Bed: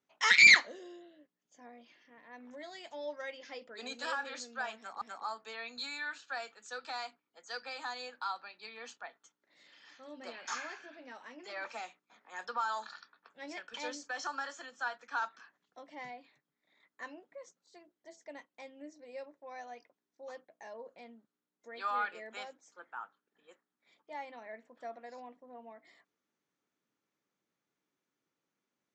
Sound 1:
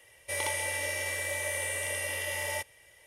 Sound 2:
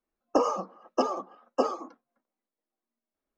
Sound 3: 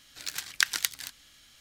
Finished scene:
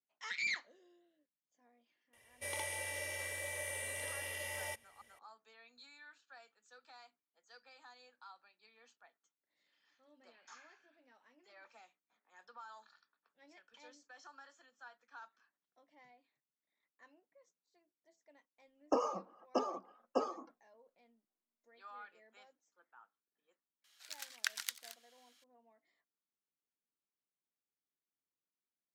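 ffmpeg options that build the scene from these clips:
-filter_complex "[0:a]volume=-18dB[a];[3:a]highpass=f=680:w=0.5412,highpass=f=680:w=1.3066[b];[1:a]atrim=end=3.06,asetpts=PTS-STARTPTS,volume=-9dB,afade=t=in:d=0.004:c=hsin,afade=t=out:st=3.056:d=0.004:c=hsin,adelay=2130[c];[2:a]atrim=end=3.37,asetpts=PTS-STARTPTS,volume=-9dB,afade=t=in:d=0.004:c=hsin,afade=t=out:st=3.366:d=0.004:c=hsin,adelay=18570[d];[b]atrim=end=1.6,asetpts=PTS-STARTPTS,volume=-12.5dB,afade=t=in:d=0.004:c=hsin,afade=t=out:st=1.596:d=0.004:c=hsin,adelay=23840[e];[a][c][d][e]amix=inputs=4:normalize=0"

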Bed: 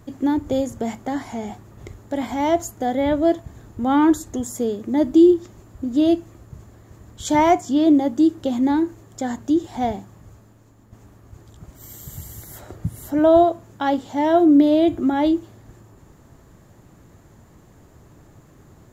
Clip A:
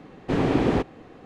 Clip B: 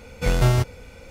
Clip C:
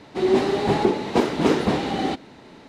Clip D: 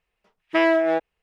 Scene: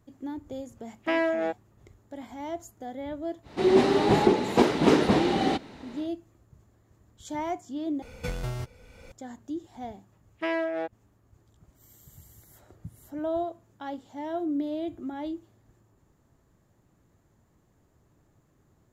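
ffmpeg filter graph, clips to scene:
-filter_complex "[4:a]asplit=2[a][b];[0:a]volume=-16dB[c];[2:a]acompressor=threshold=-28dB:ratio=5:attack=40:release=612:knee=1:detection=rms[d];[c]asplit=2[e][f];[e]atrim=end=8.024[g];[d]atrim=end=1.1,asetpts=PTS-STARTPTS,volume=-3.5dB[h];[f]atrim=start=9.116[i];[a]atrim=end=1.22,asetpts=PTS-STARTPTS,volume=-7dB,afade=t=in:d=0.004:c=hsin,afade=t=out:st=1.216:d=0.004:c=hsin,adelay=530[j];[3:a]atrim=end=2.68,asetpts=PTS-STARTPTS,volume=-1dB,afade=t=in:d=0.1,afade=t=out:st=2.58:d=0.1,adelay=3420[k];[b]atrim=end=1.22,asetpts=PTS-STARTPTS,volume=-10dB,afade=t=in:d=0.004:c=hsin,afade=t=out:st=1.216:d=0.004:c=hsin,adelay=9880[l];[g][h]acrossfade=d=0.004:c1=hsin:c2=hsin[m];[m][i]acrossfade=d=0.004:c1=hsin:c2=hsin[n];[n][j][k][l]amix=inputs=4:normalize=0"

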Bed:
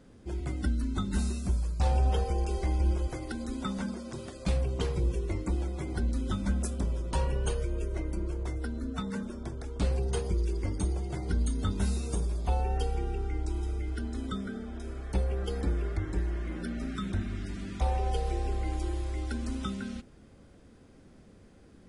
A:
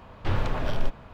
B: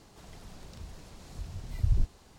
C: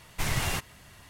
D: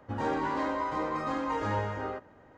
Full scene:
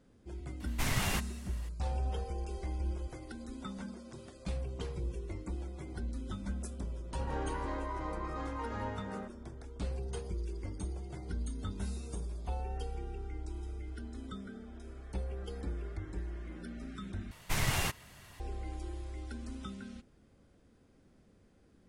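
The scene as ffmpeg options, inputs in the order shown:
-filter_complex "[3:a]asplit=2[a][b];[0:a]volume=-9dB,asplit=2[c][d];[c]atrim=end=17.314[e];[b]atrim=end=1.09,asetpts=PTS-STARTPTS,volume=-2.5dB[f];[d]atrim=start=18.396[g];[a]atrim=end=1.09,asetpts=PTS-STARTPTS,volume=-3.5dB,afade=t=in:d=0.004:c=hsin,afade=t=out:st=1.086:d=0.004:c=hsin,adelay=600[h];[4:a]atrim=end=2.57,asetpts=PTS-STARTPTS,volume=-9dB,afade=t=in:d=0.004:c=hsin,afade=t=out:st=2.566:d=0.004:c=hsin,adelay=7090[i];[e][f]acrossfade=d=0.004:c1=hsin:c2=hsin[j];[j][g]acrossfade=d=0.004:c1=hsin:c2=hsin[k];[k][h][i]amix=inputs=3:normalize=0"

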